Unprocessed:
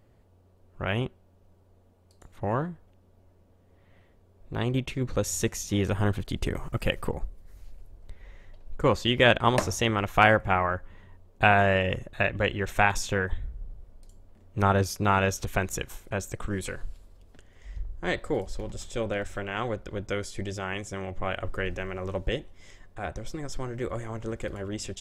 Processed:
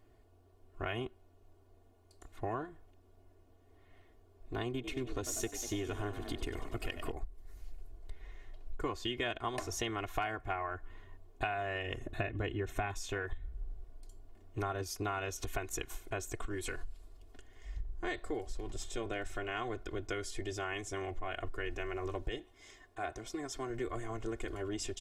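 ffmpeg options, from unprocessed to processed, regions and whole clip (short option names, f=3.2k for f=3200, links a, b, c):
-filter_complex "[0:a]asettb=1/sr,asplit=3[a][b][c];[a]atrim=end=4.714[d];[b]atrim=start=4.71:end=7.12,asetpts=PTS-STARTPTS,afade=t=in:d=0.004:c=qsin,afade=t=out:st=2.406:d=0.004:c=qsin,aeval=exprs='if(lt(val(0),0),0.708*val(0),val(0))':c=same,asplit=7[e][f][g][h][i][j][k];[f]adelay=96,afreqshift=65,volume=-12dB[l];[g]adelay=192,afreqshift=130,volume=-16.7dB[m];[h]adelay=288,afreqshift=195,volume=-21.5dB[n];[i]adelay=384,afreqshift=260,volume=-26.2dB[o];[j]adelay=480,afreqshift=325,volume=-30.9dB[p];[k]adelay=576,afreqshift=390,volume=-35.7dB[q];[e][l][m][n][o][p][q]amix=inputs=7:normalize=0,atrim=end_sample=106281[r];[c]atrim=start=7.116[s];[d][r]acrossfade=d=0.004:c1=hsin:c2=qsin[t];[t][s]acrossfade=d=0.004:c1=qsin:c2=hsin,asettb=1/sr,asplit=3[u][v][w];[u]atrim=end=12.034[x];[v]atrim=start=12.03:end=12.94,asetpts=PTS-STARTPTS,afade=t=in:d=0.004:c=qsin,afade=t=out:st=0.906:d=0.004:c=qsin,equalizer=f=140:w=0.33:g=11.5,bandreject=f=4.7k:w=10[y];[w]atrim=start=12.936[z];[x][y]acrossfade=d=0.004:c1=hsin:c2=qsin[aa];[aa][z]acrossfade=d=0.004:c1=qsin:c2=hsin,asettb=1/sr,asplit=3[ab][ac][ad];[ab]atrim=end=22.394[ae];[ac]atrim=start=22.39:end=23.7,asetpts=PTS-STARTPTS,afade=t=in:d=0.004:c=qsin,afade=t=out:st=1.306:d=0.004:c=qsin,highpass=f=72:p=1,lowshelf=f=140:g=-5[af];[ad]atrim=start=23.696[ag];[ae][af]acrossfade=d=0.004:c1=hsin:c2=qsin[ah];[ah][ag]acrossfade=d=0.004:c1=qsin:c2=hsin,equalizer=f=74:w=0.59:g=-3.5,aecho=1:1:2.8:0.84,acompressor=threshold=-29dB:ratio=6,volume=-4.5dB"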